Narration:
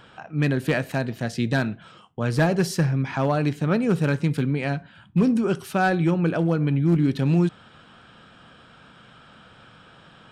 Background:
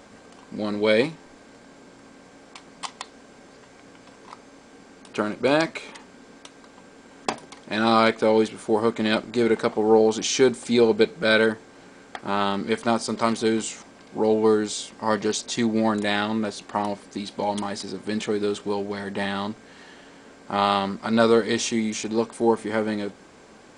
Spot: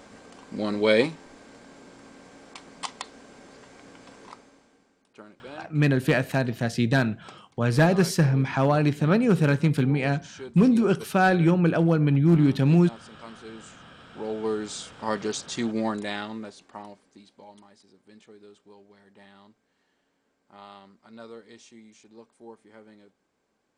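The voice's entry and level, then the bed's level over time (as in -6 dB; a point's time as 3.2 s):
5.40 s, +1.0 dB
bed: 4.24 s -0.5 dB
5.08 s -22 dB
13.4 s -22 dB
14.83 s -5 dB
15.84 s -5 dB
17.69 s -25.5 dB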